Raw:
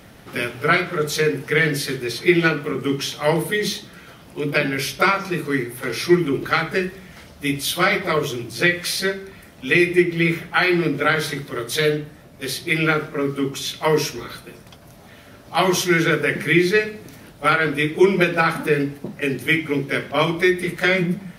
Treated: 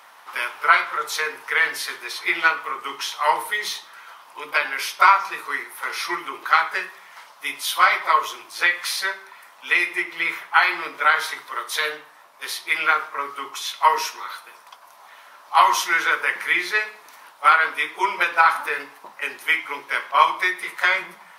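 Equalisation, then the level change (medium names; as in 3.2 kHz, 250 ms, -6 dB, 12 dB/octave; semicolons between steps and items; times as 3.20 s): resonant high-pass 1 kHz, resonance Q 4.9; -2.5 dB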